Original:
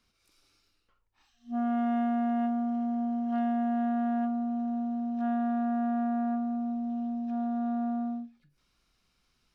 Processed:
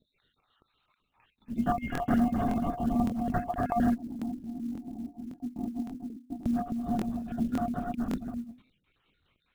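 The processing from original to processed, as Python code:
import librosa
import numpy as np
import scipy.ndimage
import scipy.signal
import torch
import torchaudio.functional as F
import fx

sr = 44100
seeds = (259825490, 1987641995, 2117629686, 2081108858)

y = fx.spec_dropout(x, sr, seeds[0], share_pct=65)
y = scipy.signal.sosfilt(scipy.signal.butter(2, 42.0, 'highpass', fs=sr, output='sos'), y)
y = fx.high_shelf(y, sr, hz=2400.0, db=2.5)
y = fx.hum_notches(y, sr, base_hz=50, count=6)
y = y + 10.0 ** (-5.0 / 20.0) * np.pad(y, (int(256 * sr / 1000.0), 0))[:len(y)]
y = fx.lpc_vocoder(y, sr, seeds[1], excitation='whisper', order=16)
y = fx.formant_cascade(y, sr, vowel='u', at=(3.94, 6.44), fade=0.02)
y = fx.quant_float(y, sr, bits=4)
y = fx.buffer_crackle(y, sr, first_s=0.81, period_s=0.56, block=1024, kind='repeat')
y = y * 10.0 ** (5.0 / 20.0)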